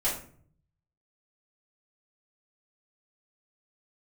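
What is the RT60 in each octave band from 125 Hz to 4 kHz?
1.1, 0.80, 0.55, 0.45, 0.40, 0.30 seconds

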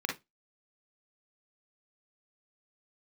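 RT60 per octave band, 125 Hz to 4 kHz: 0.20, 0.20, 0.20, 0.15, 0.15, 0.20 seconds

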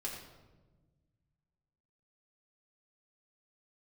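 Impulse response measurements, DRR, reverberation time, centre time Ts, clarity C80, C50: −4.0 dB, 1.3 s, 45 ms, 5.0 dB, 3.5 dB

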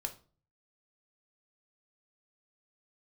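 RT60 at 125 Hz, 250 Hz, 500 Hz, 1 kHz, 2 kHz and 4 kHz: 0.70, 0.50, 0.45, 0.35, 0.30, 0.30 seconds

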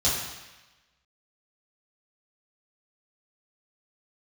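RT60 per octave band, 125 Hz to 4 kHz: 1.0, 1.0, 1.0, 1.2, 1.2, 1.1 seconds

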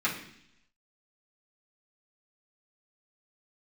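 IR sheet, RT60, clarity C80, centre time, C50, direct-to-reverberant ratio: 0.70 s, 11.0 dB, 25 ms, 7.5 dB, −9.0 dB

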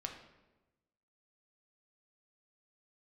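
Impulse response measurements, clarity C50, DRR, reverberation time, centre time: 6.5 dB, 2.5 dB, 1.1 s, 25 ms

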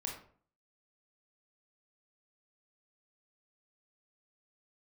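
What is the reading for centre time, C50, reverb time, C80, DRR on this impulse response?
30 ms, 5.0 dB, 0.50 s, 9.5 dB, −0.5 dB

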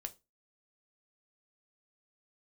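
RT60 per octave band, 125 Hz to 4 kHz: 0.30, 0.30, 0.25, 0.20, 0.20, 0.20 seconds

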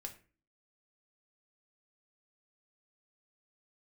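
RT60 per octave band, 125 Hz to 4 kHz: 0.50, 0.60, 0.40, 0.35, 0.40, 0.25 seconds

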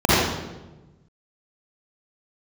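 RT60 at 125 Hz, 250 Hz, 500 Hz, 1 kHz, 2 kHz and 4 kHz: 1.8, 1.4, 1.3, 1.0, 0.85, 0.80 seconds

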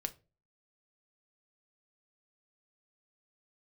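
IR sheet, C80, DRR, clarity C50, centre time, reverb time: 26.0 dB, 7.5 dB, 19.5 dB, 5 ms, non-exponential decay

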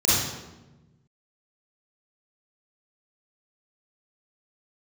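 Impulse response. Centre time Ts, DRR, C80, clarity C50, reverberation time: 96 ms, −11.0 dB, 1.0 dB, −5.0 dB, 1.1 s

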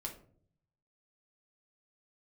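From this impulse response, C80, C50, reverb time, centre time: 14.0 dB, 9.5 dB, 0.55 s, 17 ms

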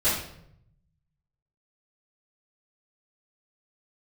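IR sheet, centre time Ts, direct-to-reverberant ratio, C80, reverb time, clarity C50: 49 ms, −14.5 dB, 6.5 dB, 0.75 s, 2.5 dB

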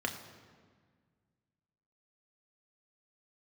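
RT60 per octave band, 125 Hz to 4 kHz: 2.5, 2.3, 1.7, 1.6, 1.5, 1.2 seconds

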